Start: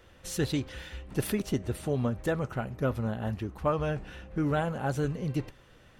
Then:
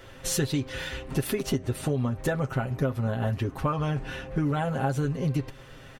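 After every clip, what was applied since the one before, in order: comb 7.5 ms, depth 64%; compression, threshold -32 dBFS, peak gain reduction 12.5 dB; trim +8.5 dB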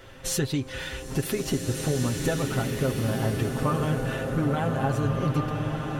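swelling reverb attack 1870 ms, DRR 1 dB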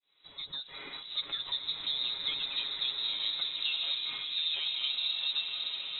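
fade-in on the opening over 0.98 s; frequency inversion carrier 3.9 kHz; trim -8.5 dB

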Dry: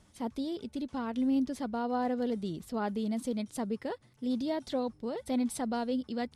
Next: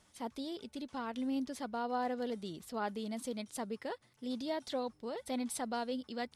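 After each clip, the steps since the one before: bass shelf 390 Hz -11 dB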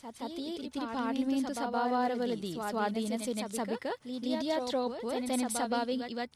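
level rider gain up to 5 dB; on a send: reverse echo 170 ms -5 dB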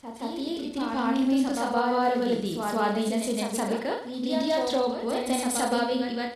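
reverse bouncing-ball echo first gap 30 ms, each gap 1.2×, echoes 5; tape noise reduction on one side only decoder only; trim +4.5 dB

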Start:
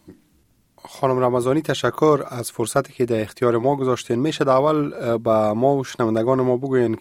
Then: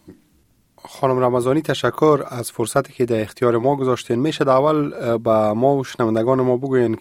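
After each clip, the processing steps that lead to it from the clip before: dynamic bell 6.4 kHz, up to -4 dB, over -46 dBFS, Q 2.4; trim +1.5 dB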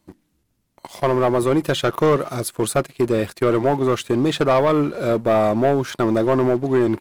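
waveshaping leveller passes 2; trim -6 dB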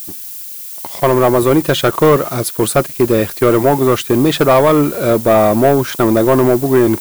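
added noise violet -35 dBFS; trim +6.5 dB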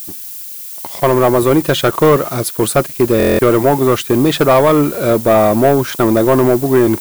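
buffer glitch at 3.18 s, samples 1024, times 8

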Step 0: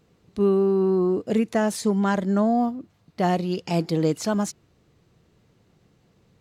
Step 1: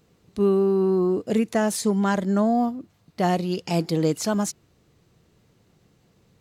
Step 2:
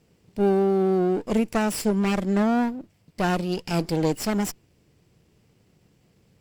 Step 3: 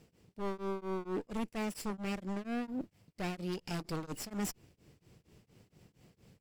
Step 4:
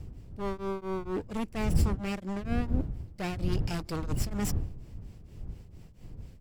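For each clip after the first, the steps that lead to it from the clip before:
treble shelf 6.2 kHz +6.5 dB
comb filter that takes the minimum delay 0.38 ms
one-sided wavefolder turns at -20.5 dBFS; reverse; compression 6:1, threshold -34 dBFS, peak gain reduction 14 dB; reverse; tremolo of two beating tones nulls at 4.3 Hz; trim +1 dB
wind noise 91 Hz -37 dBFS; trim +3.5 dB

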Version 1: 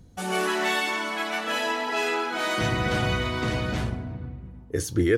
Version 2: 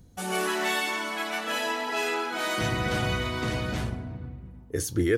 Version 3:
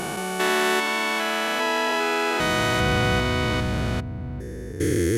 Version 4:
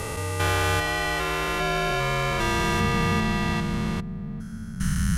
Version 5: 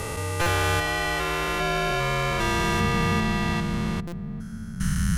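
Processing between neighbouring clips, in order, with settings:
treble shelf 9.2 kHz +8.5 dB; trim -2.5 dB
spectrogram pixelated in time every 400 ms; trim +7.5 dB
frequency shift -280 Hz; trim -1.5 dB
buffer glitch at 0.41/4.07 s, samples 256, times 8

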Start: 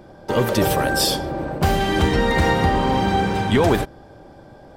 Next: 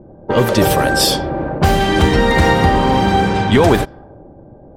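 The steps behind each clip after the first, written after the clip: level-controlled noise filter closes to 460 Hz, open at -15 dBFS; trim +5.5 dB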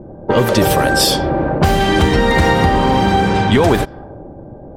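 compression 2:1, threshold -20 dBFS, peak gain reduction 7.5 dB; trim +6 dB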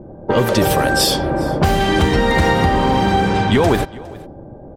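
delay 410 ms -22 dB; trim -2 dB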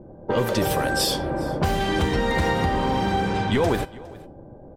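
feedback comb 500 Hz, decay 0.24 s, harmonics all, mix 60%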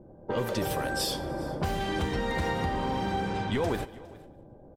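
feedback delay 149 ms, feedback 54%, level -22 dB; trim -7.5 dB

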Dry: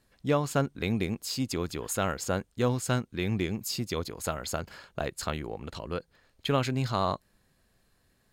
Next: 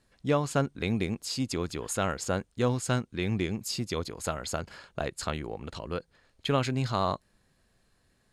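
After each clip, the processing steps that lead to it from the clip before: low-pass 11 kHz 24 dB/octave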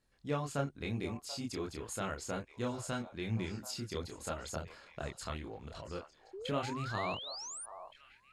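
chorus voices 4, 0.85 Hz, delay 27 ms, depth 1.9 ms; painted sound rise, 6.33–7.66 s, 360–10000 Hz -39 dBFS; repeats whose band climbs or falls 734 ms, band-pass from 820 Hz, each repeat 1.4 oct, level -10 dB; trim -5.5 dB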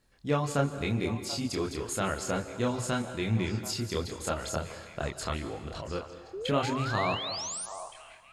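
reverberation RT60 1.3 s, pre-delay 134 ms, DRR 11.5 dB; trim +7.5 dB

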